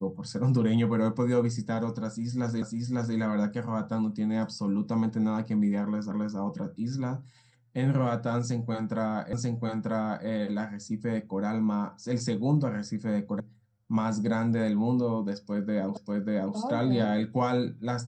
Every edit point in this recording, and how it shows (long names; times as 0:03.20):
0:02.62: the same again, the last 0.55 s
0:06.11: the same again, the last 0.27 s
0:09.33: the same again, the last 0.94 s
0:13.40: cut off before it has died away
0:15.97: the same again, the last 0.59 s